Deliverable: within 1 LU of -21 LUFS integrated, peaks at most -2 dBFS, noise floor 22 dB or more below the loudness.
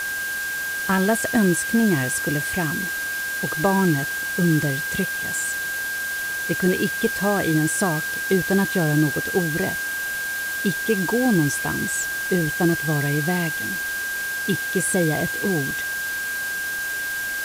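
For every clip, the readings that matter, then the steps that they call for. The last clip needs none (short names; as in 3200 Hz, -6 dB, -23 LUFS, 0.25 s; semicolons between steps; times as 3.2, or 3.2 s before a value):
steady tone 1600 Hz; tone level -25 dBFS; noise floor -27 dBFS; noise floor target -44 dBFS; loudness -22.0 LUFS; peak -7.5 dBFS; loudness target -21.0 LUFS
-> notch 1600 Hz, Q 30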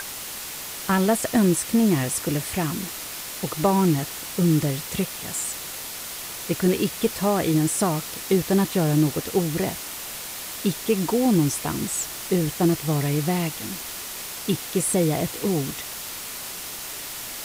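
steady tone none; noise floor -35 dBFS; noise floor target -47 dBFS
-> denoiser 12 dB, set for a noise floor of -35 dBFS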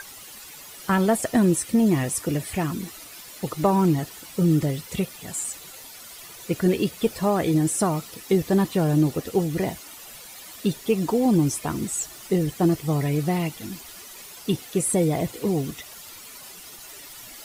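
noise floor -43 dBFS; noise floor target -46 dBFS
-> denoiser 6 dB, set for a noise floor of -43 dBFS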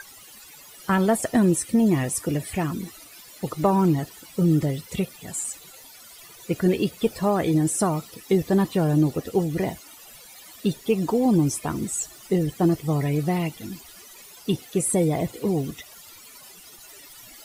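noise floor -47 dBFS; loudness -24.0 LUFS; peak -9.5 dBFS; loudness target -21.0 LUFS
-> gain +3 dB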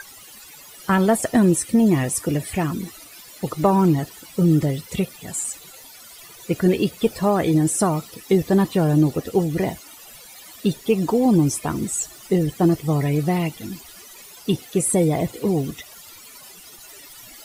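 loudness -21.0 LUFS; peak -6.5 dBFS; noise floor -44 dBFS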